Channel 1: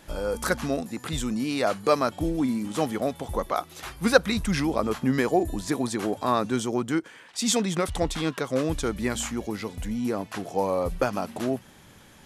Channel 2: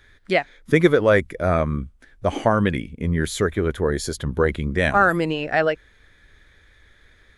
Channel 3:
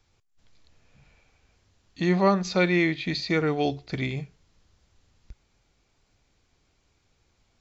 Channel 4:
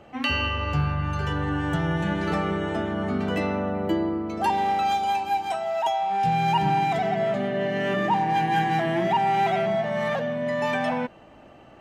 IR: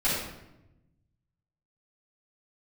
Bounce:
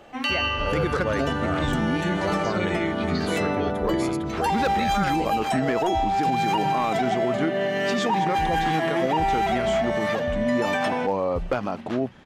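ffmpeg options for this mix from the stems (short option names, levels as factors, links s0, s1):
-filter_complex "[0:a]lowpass=3300,asoftclip=type=hard:threshold=0.178,adelay=500,volume=1.33[s0];[1:a]volume=0.355[s1];[2:a]volume=0.501,asplit=2[s2][s3];[3:a]bass=f=250:g=-6,treble=f=4000:g=6,volume=1.26[s4];[s3]apad=whole_len=562507[s5];[s0][s5]sidechaincompress=threshold=0.00355:ratio=8:attack=16:release=121[s6];[s6][s1][s2][s4]amix=inputs=4:normalize=0,alimiter=limit=0.188:level=0:latency=1:release=49"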